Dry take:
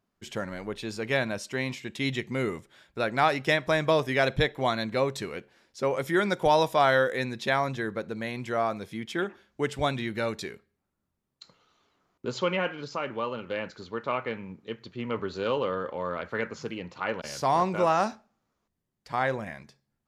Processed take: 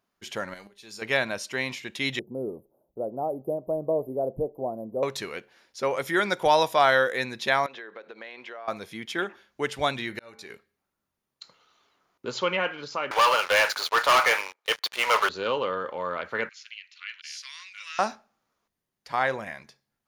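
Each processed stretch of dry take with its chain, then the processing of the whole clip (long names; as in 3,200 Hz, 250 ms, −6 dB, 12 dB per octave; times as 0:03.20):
0:00.54–0:01.02: bass and treble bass 0 dB, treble +9 dB + volume swells 357 ms + tuned comb filter 200 Hz, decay 0.27 s, mix 70%
0:02.19–0:05.03: inverse Chebyshev band-stop filter 1,700–6,300 Hz, stop band 60 dB + parametric band 100 Hz −4.5 dB 1.7 octaves
0:07.66–0:08.68: Chebyshev band-pass filter 430–3,300 Hz + downward compressor, threshold −39 dBFS
0:10.05–0:10.50: notch filter 3,300 Hz + hum removal 73.73 Hz, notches 32 + volume swells 677 ms
0:13.11–0:15.29: high-pass filter 630 Hz 24 dB per octave + leveller curve on the samples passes 5
0:16.49–0:17.99: inverse Chebyshev high-pass filter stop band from 820 Hz, stop band 50 dB + high-frequency loss of the air 67 metres
whole clip: low-shelf EQ 350 Hz −11.5 dB; notch filter 7,800 Hz, Q 7.8; level +4 dB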